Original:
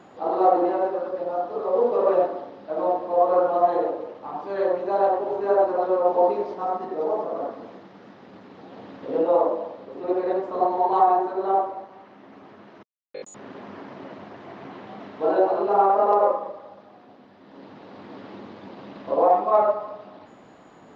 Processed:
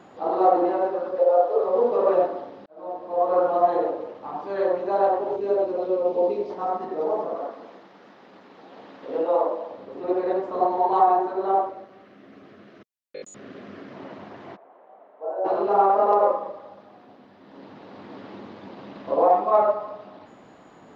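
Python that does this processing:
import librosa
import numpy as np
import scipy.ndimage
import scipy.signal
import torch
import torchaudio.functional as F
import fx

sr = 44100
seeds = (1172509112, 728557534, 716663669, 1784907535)

y = fx.highpass_res(x, sr, hz=500.0, q=3.9, at=(1.18, 1.64))
y = fx.band_shelf(y, sr, hz=1100.0, db=-10.5, octaves=1.7, at=(5.36, 6.5))
y = fx.highpass(y, sr, hz=440.0, slope=6, at=(7.35, 9.71))
y = fx.peak_eq(y, sr, hz=900.0, db=-13.5, octaves=0.43, at=(11.69, 13.94))
y = fx.ladder_bandpass(y, sr, hz=710.0, resonance_pct=45, at=(14.55, 15.44), fade=0.02)
y = fx.edit(y, sr, fx.fade_in_span(start_s=2.66, length_s=0.79), tone=tone)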